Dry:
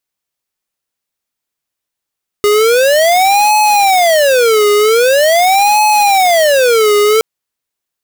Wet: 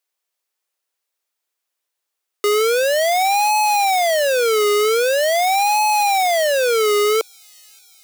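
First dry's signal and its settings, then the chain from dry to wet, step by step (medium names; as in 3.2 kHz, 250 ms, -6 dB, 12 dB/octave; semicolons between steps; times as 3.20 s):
siren wail 413–850 Hz 0.44 per s square -9 dBFS 4.77 s
high-pass 360 Hz 24 dB/octave; peak limiter -8.5 dBFS; feedback echo behind a high-pass 578 ms, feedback 69%, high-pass 4.8 kHz, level -20.5 dB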